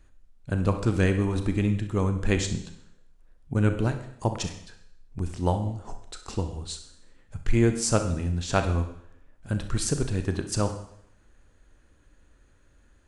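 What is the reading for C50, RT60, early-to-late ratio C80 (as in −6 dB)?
9.0 dB, 0.70 s, 12.5 dB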